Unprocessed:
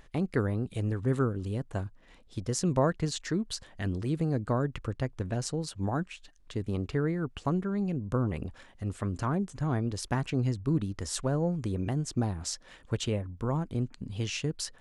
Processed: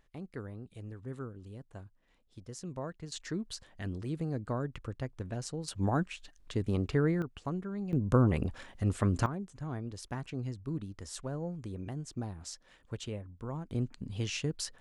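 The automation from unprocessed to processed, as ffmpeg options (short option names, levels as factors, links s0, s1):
-af "asetnsamples=n=441:p=0,asendcmd='3.12 volume volume -6dB;5.68 volume volume 1dB;7.22 volume volume -7dB;7.93 volume volume 4dB;9.26 volume volume -9dB;13.71 volume volume -2dB',volume=0.2"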